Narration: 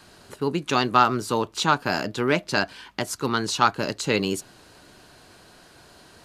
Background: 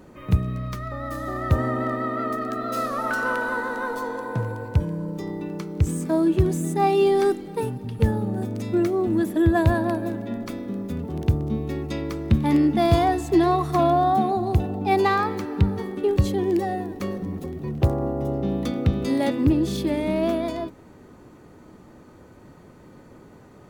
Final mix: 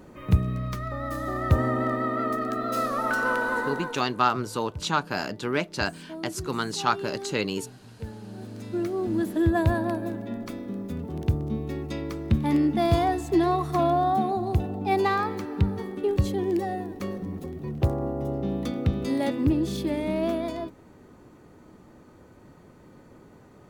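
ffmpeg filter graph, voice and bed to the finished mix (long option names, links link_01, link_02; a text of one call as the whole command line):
ffmpeg -i stem1.wav -i stem2.wav -filter_complex "[0:a]adelay=3250,volume=-4.5dB[link_01];[1:a]volume=13dB,afade=type=out:start_time=3.62:duration=0.43:silence=0.149624,afade=type=in:start_time=8.19:duration=1.06:silence=0.211349[link_02];[link_01][link_02]amix=inputs=2:normalize=0" out.wav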